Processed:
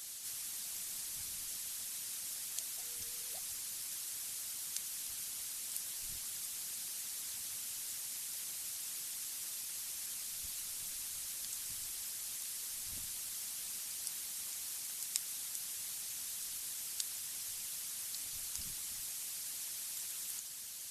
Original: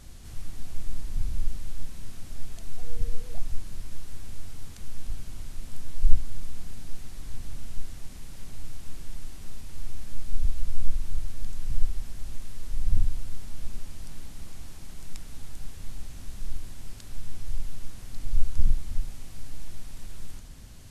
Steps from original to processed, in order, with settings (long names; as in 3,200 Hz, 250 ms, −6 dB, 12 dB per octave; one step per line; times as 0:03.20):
harmonic and percussive parts rebalanced percussive +9 dB
first difference
level +6 dB